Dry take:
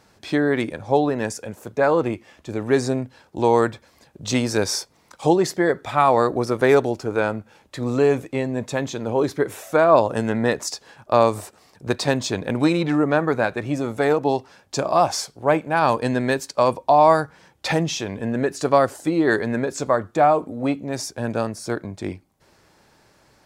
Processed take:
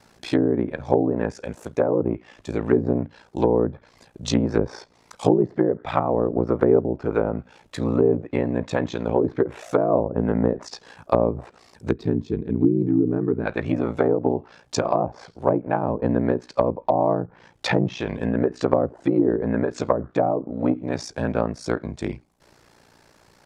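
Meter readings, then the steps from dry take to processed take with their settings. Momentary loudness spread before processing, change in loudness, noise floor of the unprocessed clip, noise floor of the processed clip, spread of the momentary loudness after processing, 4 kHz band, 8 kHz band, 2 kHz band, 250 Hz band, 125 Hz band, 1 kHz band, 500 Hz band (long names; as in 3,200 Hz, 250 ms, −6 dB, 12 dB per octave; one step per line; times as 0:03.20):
12 LU, −2.0 dB, −58 dBFS, −57 dBFS, 9 LU, −7.5 dB, −10.0 dB, −8.5 dB, +1.0 dB, +0.5 dB, −7.0 dB, −2.0 dB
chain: ring modulation 29 Hz
gain on a spectral selection 0:11.91–0:13.46, 460–12,000 Hz −18 dB
treble cut that deepens with the level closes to 450 Hz, closed at −18 dBFS
level +4 dB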